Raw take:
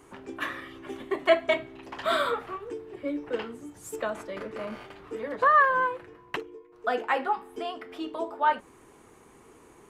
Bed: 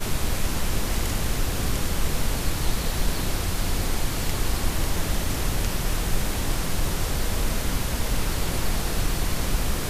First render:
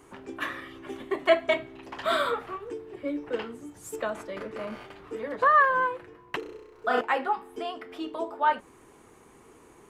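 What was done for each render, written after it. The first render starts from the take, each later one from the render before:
0:06.39–0:07.01: flutter between parallel walls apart 5.6 metres, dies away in 1.1 s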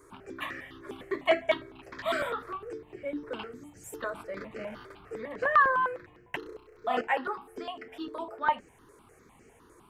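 step-sequenced phaser 9.9 Hz 780–3,600 Hz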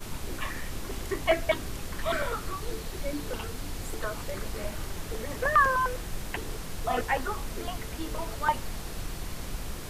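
mix in bed −11.5 dB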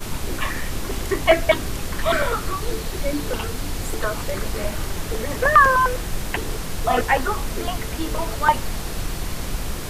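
level +9 dB
brickwall limiter −3 dBFS, peak gain reduction 1 dB

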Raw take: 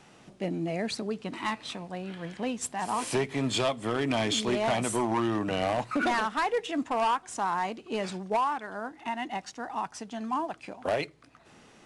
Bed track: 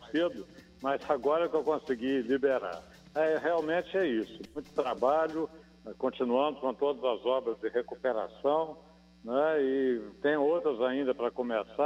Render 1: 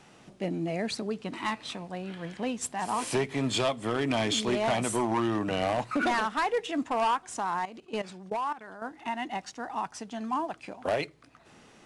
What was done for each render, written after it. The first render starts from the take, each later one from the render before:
0:07.40–0:08.82: output level in coarse steps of 15 dB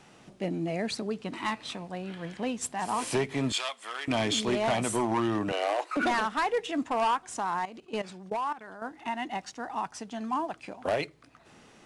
0:03.52–0:04.08: high-pass filter 1,200 Hz
0:05.52–0:05.97: Butterworth high-pass 310 Hz 96 dB per octave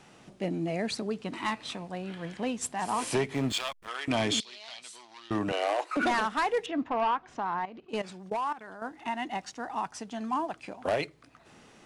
0:03.34–0:03.88: slack as between gear wheels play −35 dBFS
0:04.40–0:05.31: resonant band-pass 4,300 Hz, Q 2.9
0:06.66–0:07.89: high-frequency loss of the air 250 metres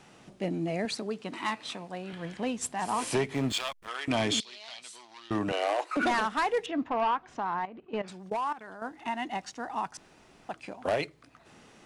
0:00.85–0:02.13: high-pass filter 210 Hz 6 dB per octave
0:07.67–0:08.08: low-pass filter 2,400 Hz
0:09.97–0:10.49: fill with room tone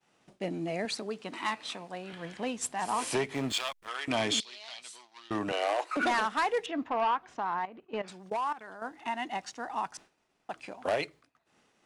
downward expander −46 dBFS
low-shelf EQ 250 Hz −7.5 dB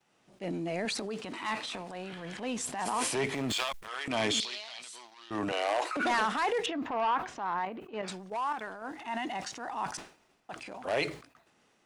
transient designer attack −6 dB, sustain +8 dB
level that may fall only so fast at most 130 dB per second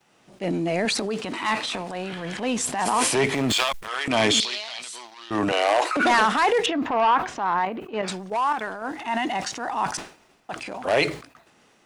level +9.5 dB

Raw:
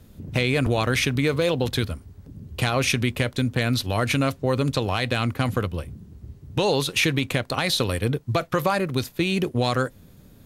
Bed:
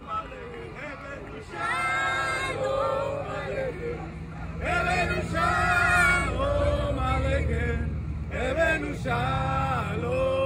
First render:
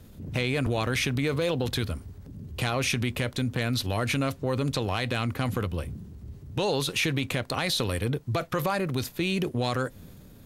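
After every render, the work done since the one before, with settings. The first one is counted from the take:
transient designer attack −4 dB, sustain +3 dB
downward compressor 2 to 1, threshold −26 dBFS, peak gain reduction 5 dB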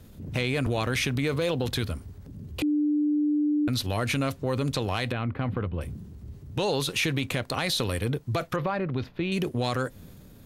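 0:02.62–0:03.68: beep over 297 Hz −21 dBFS
0:05.12–0:05.81: high-frequency loss of the air 450 metres
0:08.56–0:09.32: high-frequency loss of the air 320 metres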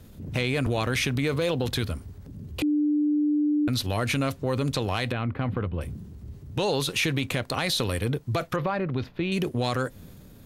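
level +1 dB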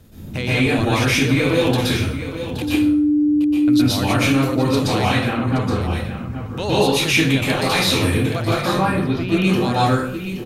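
on a send: single-tap delay 822 ms −10.5 dB
on the sum: dense smooth reverb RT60 0.57 s, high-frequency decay 0.75×, pre-delay 110 ms, DRR −8.5 dB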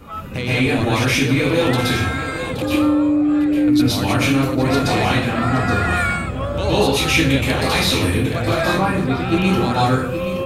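mix in bed +0.5 dB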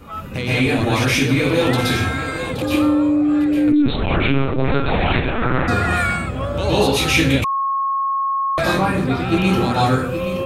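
0:03.72–0:05.68: linear-prediction vocoder at 8 kHz pitch kept
0:07.44–0:08.58: beep over 1,090 Hz −17 dBFS

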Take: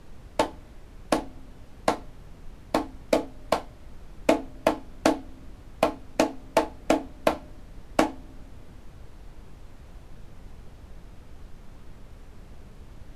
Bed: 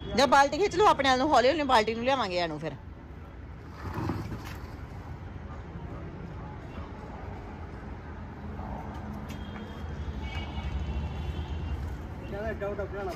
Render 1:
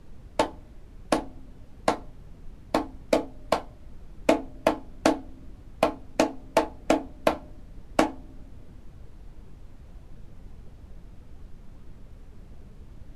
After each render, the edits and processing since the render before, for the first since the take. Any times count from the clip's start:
broadband denoise 6 dB, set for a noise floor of −48 dBFS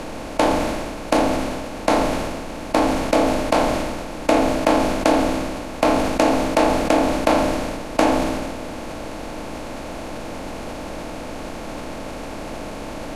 compressor on every frequency bin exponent 0.4
level that may fall only so fast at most 29 dB per second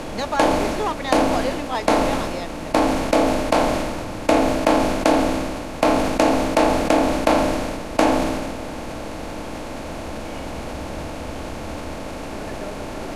mix in bed −4 dB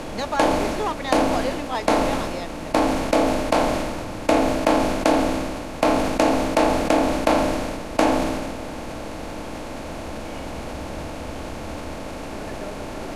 level −1.5 dB

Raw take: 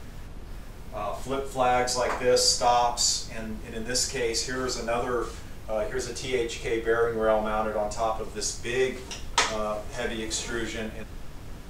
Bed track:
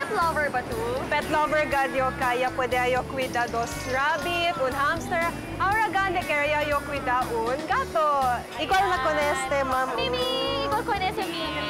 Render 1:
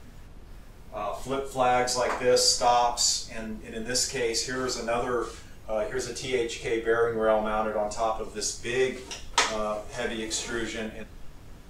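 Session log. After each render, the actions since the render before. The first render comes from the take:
noise reduction from a noise print 6 dB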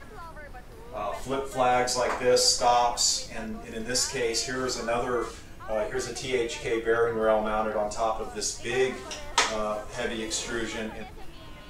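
mix in bed track −20 dB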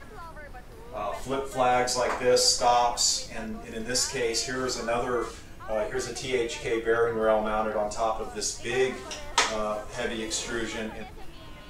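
no processing that can be heard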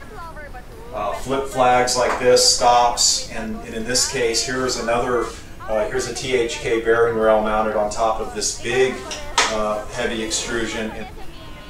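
level +8 dB
brickwall limiter −3 dBFS, peak gain reduction 2.5 dB

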